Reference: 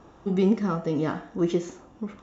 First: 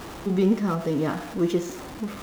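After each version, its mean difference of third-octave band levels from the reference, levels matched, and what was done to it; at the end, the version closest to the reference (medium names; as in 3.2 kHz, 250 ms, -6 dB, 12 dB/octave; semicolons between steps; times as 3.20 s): 8.0 dB: jump at every zero crossing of -34 dBFS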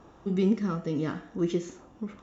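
1.0 dB: dynamic bell 770 Hz, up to -8 dB, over -43 dBFS, Q 1.2; trim -2 dB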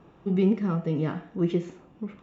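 3.0 dB: fifteen-band graphic EQ 160 Hz +10 dB, 400 Hz +4 dB, 2.5 kHz +7 dB, 6.3 kHz -8 dB; trim -6 dB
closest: second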